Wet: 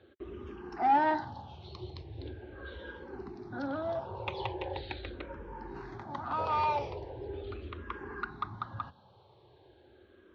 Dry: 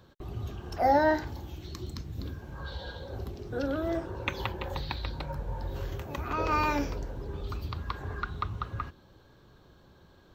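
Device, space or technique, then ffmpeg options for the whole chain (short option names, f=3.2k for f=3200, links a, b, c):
barber-pole phaser into a guitar amplifier: -filter_complex "[0:a]asplit=2[a][b];[b]afreqshift=-0.4[c];[a][c]amix=inputs=2:normalize=1,asoftclip=type=tanh:threshold=-25dB,highpass=94,equalizer=f=160:t=q:w=4:g=-8,equalizer=f=370:t=q:w=4:g=6,equalizer=f=840:t=q:w=4:g=7,lowpass=f=4.1k:w=0.5412,lowpass=f=4.1k:w=1.3066"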